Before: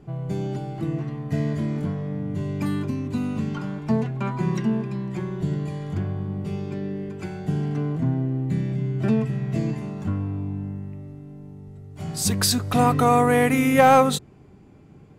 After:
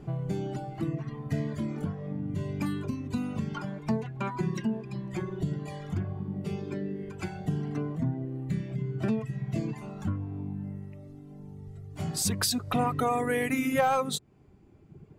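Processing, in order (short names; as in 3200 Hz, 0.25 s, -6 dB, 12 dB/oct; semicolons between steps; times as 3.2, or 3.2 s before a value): reverb removal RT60 1.8 s; compressor 2:1, threshold -34 dBFS, peak gain reduction 12 dB; gain +2.5 dB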